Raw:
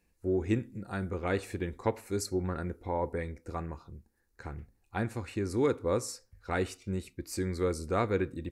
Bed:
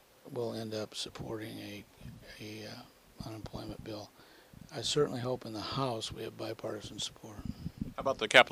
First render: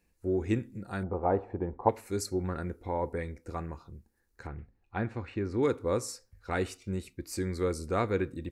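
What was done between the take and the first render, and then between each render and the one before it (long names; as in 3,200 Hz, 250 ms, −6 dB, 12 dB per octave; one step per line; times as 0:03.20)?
0:01.03–0:01.89: low-pass with resonance 830 Hz, resonance Q 3.9
0:04.47–0:05.63: low-pass filter 3,000 Hz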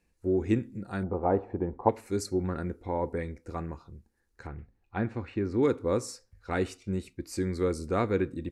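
Bessel low-pass filter 10,000 Hz
dynamic equaliser 250 Hz, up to +4 dB, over −42 dBFS, Q 0.86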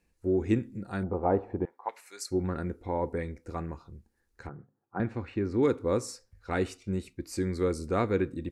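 0:01.65–0:02.31: high-pass filter 1,300 Hz
0:04.49–0:05.00: elliptic band-pass filter 130–1,400 Hz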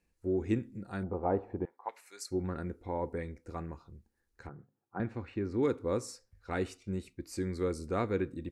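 level −4.5 dB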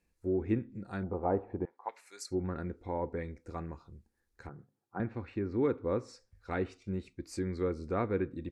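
notch filter 2,900 Hz, Q 22
treble cut that deepens with the level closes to 2,400 Hz, closed at −29.5 dBFS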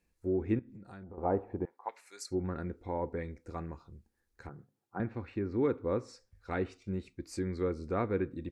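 0:00.59–0:01.18: downward compressor 5 to 1, threshold −46 dBFS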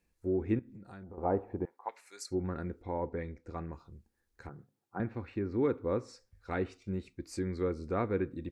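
0:02.82–0:03.73: high-frequency loss of the air 72 metres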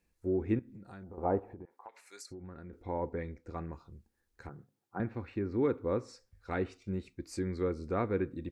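0:01.39–0:02.73: downward compressor, threshold −44 dBFS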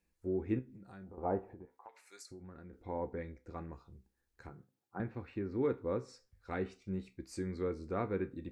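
tuned comb filter 64 Hz, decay 0.23 s, harmonics all, mix 60%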